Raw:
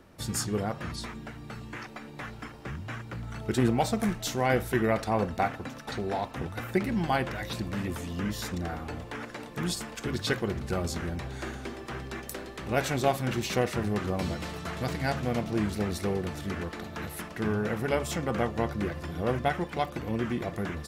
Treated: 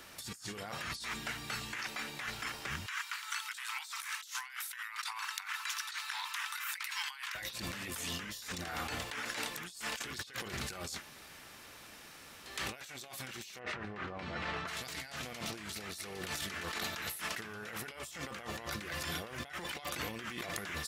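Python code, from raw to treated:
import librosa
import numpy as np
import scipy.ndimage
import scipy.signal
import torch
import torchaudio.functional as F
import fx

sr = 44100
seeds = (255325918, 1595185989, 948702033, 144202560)

y = fx.steep_highpass(x, sr, hz=920.0, slope=72, at=(2.86, 7.35))
y = fx.lowpass(y, sr, hz=1800.0, slope=12, at=(13.58, 14.67), fade=0.02)
y = fx.edit(y, sr, fx.room_tone_fill(start_s=10.91, length_s=1.63, crossfade_s=0.24), tone=tone)
y = fx.tilt_shelf(y, sr, db=-9.5, hz=1200.0)
y = fx.over_compress(y, sr, threshold_db=-42.0, ratio=-1.0)
y = fx.low_shelf(y, sr, hz=410.0, db=-4.0)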